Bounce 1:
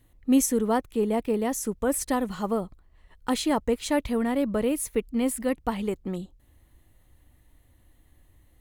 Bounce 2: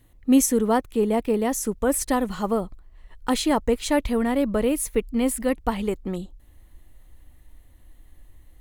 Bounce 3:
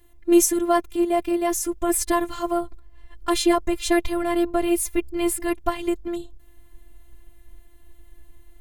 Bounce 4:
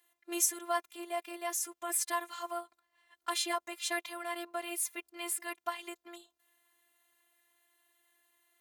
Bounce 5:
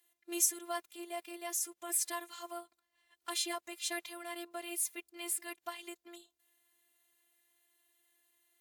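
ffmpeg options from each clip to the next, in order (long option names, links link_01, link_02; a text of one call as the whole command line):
ffmpeg -i in.wav -af "asubboost=boost=3:cutoff=51,volume=3.5dB" out.wav
ffmpeg -i in.wav -af "afftfilt=real='hypot(re,im)*cos(PI*b)':imag='0':win_size=512:overlap=0.75,volume=5.5dB" out.wav
ffmpeg -i in.wav -af "highpass=910,volume=-7dB" out.wav
ffmpeg -i in.wav -af "equalizer=frequency=1100:width_type=o:width=2:gain=-8" -ar 44100 -c:a wmav2 -b:a 128k out.wma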